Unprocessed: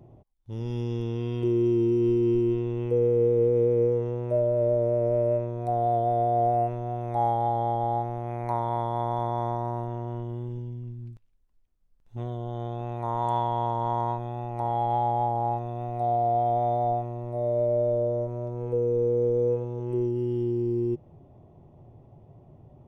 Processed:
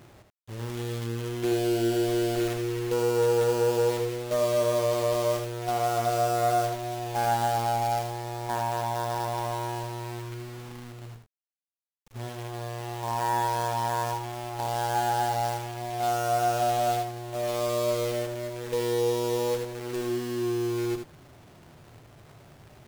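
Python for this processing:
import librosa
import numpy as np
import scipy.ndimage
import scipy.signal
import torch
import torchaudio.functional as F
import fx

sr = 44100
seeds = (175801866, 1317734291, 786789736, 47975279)

p1 = fx.diode_clip(x, sr, knee_db=-24.0)
p2 = fx.quant_companded(p1, sr, bits=4)
p3 = fx.low_shelf(p2, sr, hz=200.0, db=-3.5)
y = p3 + fx.echo_single(p3, sr, ms=78, db=-6.5, dry=0)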